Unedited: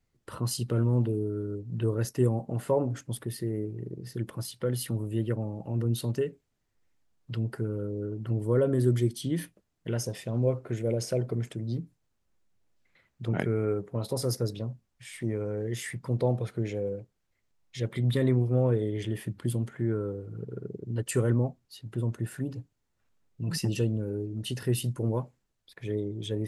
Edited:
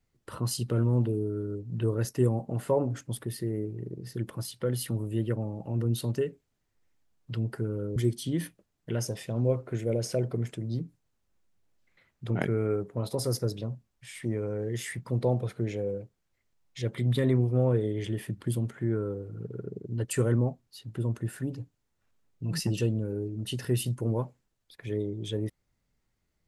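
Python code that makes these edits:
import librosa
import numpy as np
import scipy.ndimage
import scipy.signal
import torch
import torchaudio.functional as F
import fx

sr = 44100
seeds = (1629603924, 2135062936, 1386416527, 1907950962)

y = fx.edit(x, sr, fx.cut(start_s=7.96, length_s=0.98), tone=tone)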